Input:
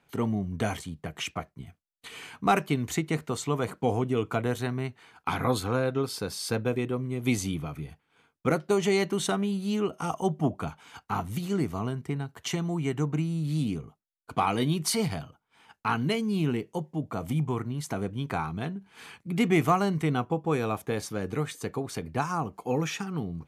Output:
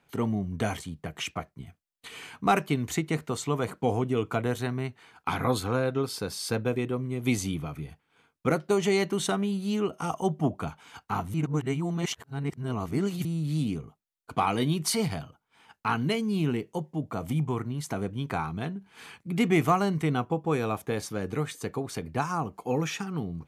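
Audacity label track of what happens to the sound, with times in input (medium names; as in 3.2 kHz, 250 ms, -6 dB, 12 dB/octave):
11.340000	13.250000	reverse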